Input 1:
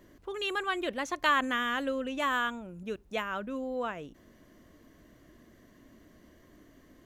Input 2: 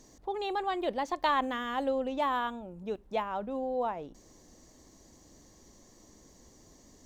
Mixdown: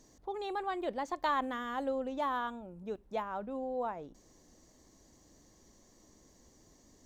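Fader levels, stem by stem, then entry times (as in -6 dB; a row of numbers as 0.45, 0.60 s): -19.5, -5.0 dB; 0.00, 0.00 s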